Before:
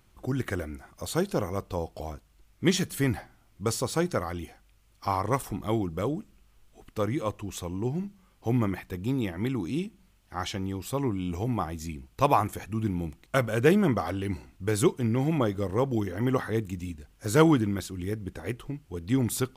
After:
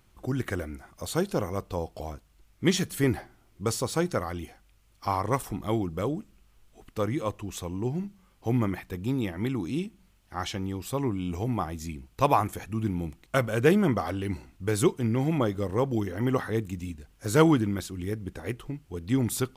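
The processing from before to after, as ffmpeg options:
ffmpeg -i in.wav -filter_complex "[0:a]asettb=1/sr,asplit=3[link_01][link_02][link_03];[link_01]atrim=end=3.034[link_04];[link_02]atrim=start=3.03:end=3.65,asetpts=PTS-STARTPTS,afade=type=in:duration=0.004:curve=qsin,afade=type=out:start_time=0.616:duration=0.004:curve=qsin,equalizer=frequency=380:width=2.6:gain=7.5[link_05];[link_03]atrim=start=3.646[link_06];[link_04][link_05]acrossfade=duration=0.004:curve1=hsin:curve2=qsin[link_07];[link_07][link_06]acrossfade=duration=0.004:curve1=qsin:curve2=hsin" out.wav

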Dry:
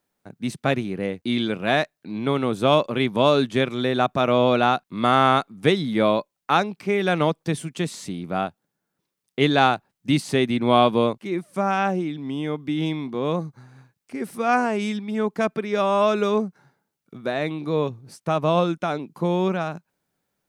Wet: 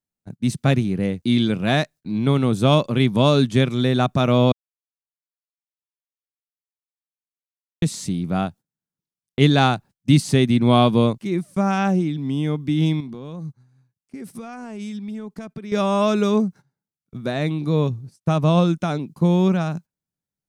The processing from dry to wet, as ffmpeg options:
ffmpeg -i in.wav -filter_complex "[0:a]asettb=1/sr,asplit=3[link_01][link_02][link_03];[link_01]atrim=end=13.004[link_04];[link_02]atrim=start=13:end=15.72,asetpts=PTS-STARTPTS,afade=type=in:duration=0.004:curve=qsin,afade=type=out:start_time=2.716:duration=0.004:curve=qsin,acompressor=threshold=-36dB:ratio=4:attack=3.2:release=140:knee=1:detection=peak[link_05];[link_03]atrim=start=15.716[link_06];[link_04][link_05]acrossfade=duration=0.004:curve1=hsin:curve2=qsin[link_07];[link_07][link_06]acrossfade=duration=0.004:curve1=qsin:curve2=hsin,asplit=3[link_08][link_09][link_10];[link_08]atrim=end=4.52,asetpts=PTS-STARTPTS,afade=type=out:start_time=4.516:duration=0.004:curve=hsin[link_11];[link_09]atrim=start=4.52:end=7.82,asetpts=PTS-STARTPTS,volume=0[link_12];[link_10]atrim=start=7.82,asetpts=PTS-STARTPTS,afade=type=in:duration=0.004:curve=hsin[link_13];[link_11][link_12][link_13]concat=n=3:v=0:a=1,highshelf=frequency=8900:gain=-7,agate=range=-19dB:threshold=-42dB:ratio=16:detection=peak,bass=frequency=250:gain=13,treble=frequency=4000:gain=11,volume=-1.5dB" out.wav

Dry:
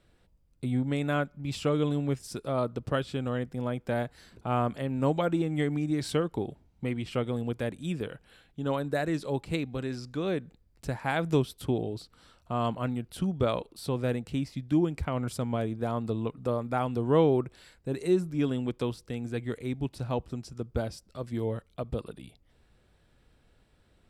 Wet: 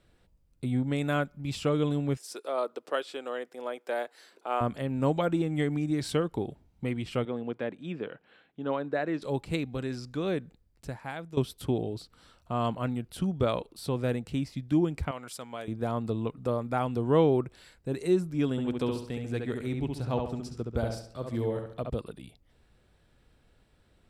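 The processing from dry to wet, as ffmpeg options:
ffmpeg -i in.wav -filter_complex "[0:a]asettb=1/sr,asplit=3[link_01][link_02][link_03];[link_01]atrim=end=0.984[link_04];[link_02]atrim=start=0.98:end=1.52,asetpts=PTS-STARTPTS,afade=type=in:duration=0.004:curve=qsin,afade=type=out:start_time=0.536:duration=0.004:curve=qsin,highshelf=frequency=4800:gain=4.5[link_05];[link_03]atrim=start=1.516[link_06];[link_04][link_05]acrossfade=duration=0.004:curve1=hsin:curve2=qsin[link_07];[link_07][link_06]acrossfade=duration=0.004:curve1=qsin:curve2=hsin,asettb=1/sr,asplit=3[link_08][link_09][link_10];[link_08]atrim=end=2.174[link_11];[link_09]atrim=start=2.17:end=4.61,asetpts=PTS-STARTPTS,afade=type=in:duration=0.004:curve=qsin,afade=type=out:start_time=2.436:duration=0.004:curve=qsin,highpass=frequency=370:width=0.5412,highpass=frequency=370:width=1.3066[link_12];[link_10]atrim=start=4.606[link_13];[link_11][link_12]acrossfade=duration=0.004:curve1=hsin:curve2=qsin[link_14];[link_14][link_13]acrossfade=duration=0.004:curve1=qsin:curve2=hsin,asettb=1/sr,asplit=3[link_15][link_16][link_17];[link_15]atrim=end=7.254[link_18];[link_16]atrim=start=7.25:end=9.22,asetpts=PTS-STARTPTS,afade=type=in:duration=0.004:curve=qsin,afade=type=out:start_time=1.966:duration=0.004:curve=qsin,highpass=220,lowpass=2800[link_19];[link_17]atrim=start=9.216[link_20];[link_18][link_19]acrossfade=duration=0.004:curve1=hsin:curve2=qsin[link_21];[link_21][link_20]acrossfade=duration=0.004:curve1=qsin:curve2=hsin,asettb=1/sr,asplit=3[link_22][link_23][link_24];[link_22]atrim=end=15.114[link_25];[link_23]atrim=start=15.11:end=15.68,asetpts=PTS-STARTPTS,afade=type=in:duration=0.004:curve=qsin,afade=type=out:start_time=0.566:duration=0.004:curve=qsin,highpass=frequency=1200:poles=1[link_26];[link_24]atrim=start=15.676[link_27];[link_25][link_26]acrossfade=duration=0.004:curve1=hsin:curve2=qsin[link_28];[link_28][link_27]acrossfade=duration=0.004:curve1=qsin:curve2=hsin,asettb=1/sr,asplit=3[link_29][link_30][link_31];[link_29]atrim=end=18.514[link_32];[link_30]atrim=start=18.51:end=21.9,asetpts=PTS-STARTPTS,afade=type=in:duration=0.004:curve=qsin,afade=type=out:start_time=3.386:duration=0.004:curve=qsin,asplit=2[link_33][link_34];[link_34]adelay=69,lowpass=frequency=3900:poles=1,volume=-4dB,asplit=2[link_35][link_36];[link_36]adelay=69,lowpass=frequency=3900:poles=1,volume=0.43,asplit=2[link_37][link_38];[link_38]adelay=69,lowpass=frequency=3900:poles=1,volume=0.43,asplit=2[link_39][link_40];[link_40]adelay=69,lowpass=frequency=3900:poles=1,volume=0.43,asplit=2[link_41][link_42];[link_42]adelay=69,lowpass=frequency=3900:poles=1,volume=0.43[link_43];[link_33][link_35][link_37][link_39][link_41][link_43]amix=inputs=6:normalize=0,atrim=end_sample=149499[link_44];[link_31]atrim=start=21.896[link_45];[link_32][link_44]acrossfade=duration=0.004:curve1=hsin:curve2=qsin[link_46];[link_46][link_45]acrossfade=duration=0.004:curve1=qsin:curve2=hsin,asplit=2[link_47][link_48];[link_47]atrim=end=11.37,asetpts=PTS-STARTPTS,afade=type=out:start_time=10.41:duration=0.96:silence=0.133352[link_49];[link_48]atrim=start=11.37,asetpts=PTS-STARTPTS,afade=type=in:duration=0.004:curve=hsin:silence=0.133352[link_50];[link_49][link_50]concat=n=2:v=0:a=1" out.wav

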